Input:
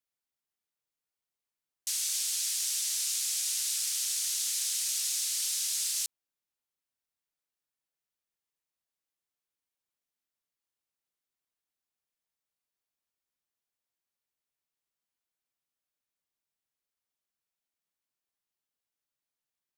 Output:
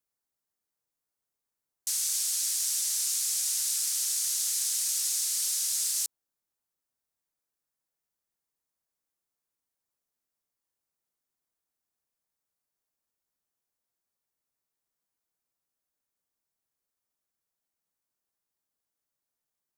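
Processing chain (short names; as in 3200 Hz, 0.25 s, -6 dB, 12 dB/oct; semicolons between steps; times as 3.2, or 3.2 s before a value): bell 2900 Hz -8 dB 1.4 oct; gain +4 dB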